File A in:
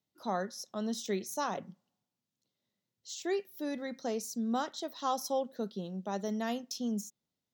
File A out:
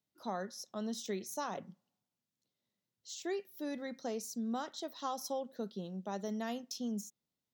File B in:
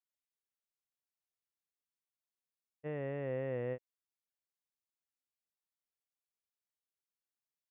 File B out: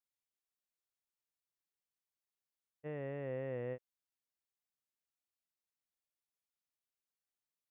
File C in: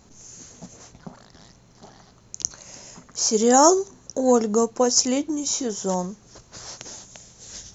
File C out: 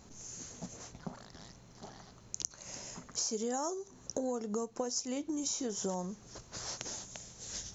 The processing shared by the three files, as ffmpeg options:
-af "acompressor=threshold=-29dB:ratio=20,volume=-3dB"

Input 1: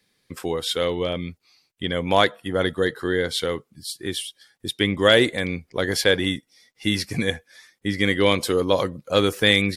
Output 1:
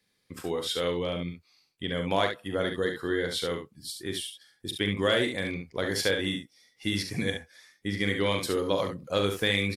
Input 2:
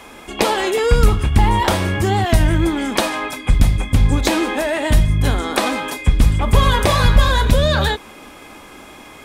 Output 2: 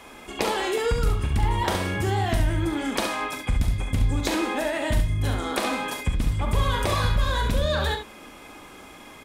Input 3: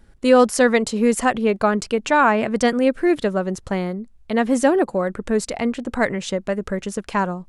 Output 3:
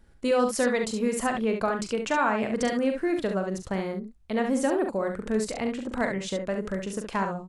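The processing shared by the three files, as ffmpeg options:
-af "acompressor=threshold=-17dB:ratio=2,aecho=1:1:41|69:0.376|0.473,volume=-6.5dB"

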